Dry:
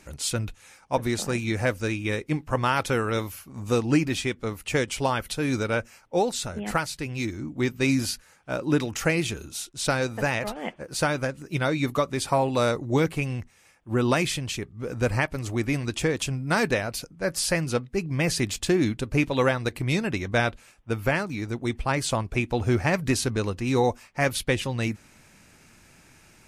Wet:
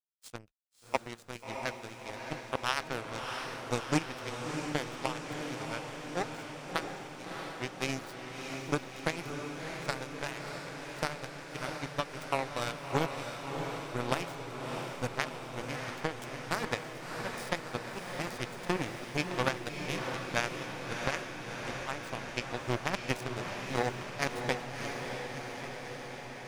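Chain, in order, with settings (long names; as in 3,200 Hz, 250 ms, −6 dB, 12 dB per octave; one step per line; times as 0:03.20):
power curve on the samples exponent 3
downward expander −56 dBFS
feedback delay with all-pass diffusion 658 ms, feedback 72%, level −5 dB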